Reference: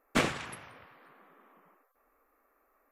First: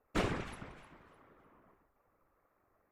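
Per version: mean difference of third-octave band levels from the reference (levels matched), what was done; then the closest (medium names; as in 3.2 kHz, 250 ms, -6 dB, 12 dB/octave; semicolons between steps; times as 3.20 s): 4.5 dB: on a send: echo whose repeats swap between lows and highs 152 ms, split 2.1 kHz, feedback 53%, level -10 dB; on the sum: hard clipper -23 dBFS, distortion -10 dB; whisper effect; tilt EQ -2 dB/octave; trim -5 dB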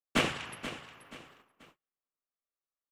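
6.5 dB: on a send: feedback delay 480 ms, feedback 34%, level -12 dB; on the sum: crackle 370 per s -65 dBFS; gate -57 dBFS, range -33 dB; peaking EQ 2.9 kHz +7 dB 0.37 oct; trim -1.5 dB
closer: first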